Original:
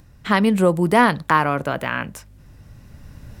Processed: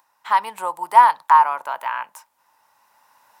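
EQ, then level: resonant high-pass 920 Hz, resonance Q 9.9; treble shelf 8.8 kHz +9 dB; -9.0 dB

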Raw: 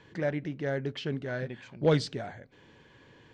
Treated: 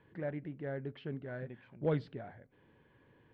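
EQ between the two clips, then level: distance through air 470 m; -7.0 dB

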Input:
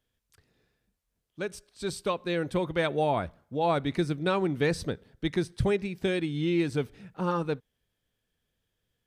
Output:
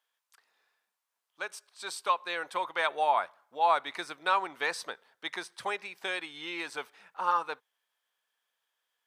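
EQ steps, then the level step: resonant high-pass 960 Hz, resonance Q 2.2; 0.0 dB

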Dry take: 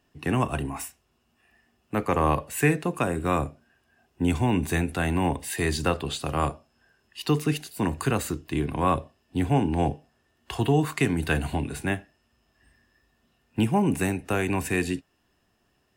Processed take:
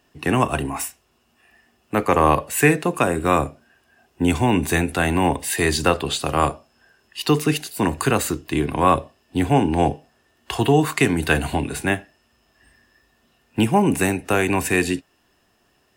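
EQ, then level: tone controls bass -5 dB, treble +1 dB; +7.5 dB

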